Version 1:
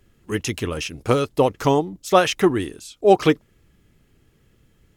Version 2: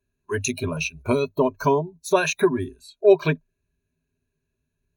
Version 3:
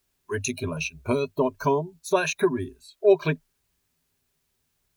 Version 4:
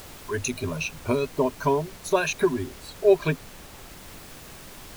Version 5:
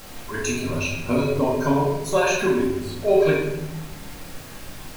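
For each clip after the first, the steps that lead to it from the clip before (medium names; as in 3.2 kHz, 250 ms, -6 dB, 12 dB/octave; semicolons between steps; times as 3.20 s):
spectral noise reduction 21 dB; rippled EQ curve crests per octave 1.5, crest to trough 17 dB; in parallel at +3 dB: compression, threshold -22 dBFS, peak gain reduction 18 dB; on the sum: trim -8.5 dB
word length cut 12-bit, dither triangular; trim -3 dB
upward compressor, threshold -31 dBFS; added noise pink -44 dBFS
simulated room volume 400 m³, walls mixed, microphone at 2.2 m; trim -2 dB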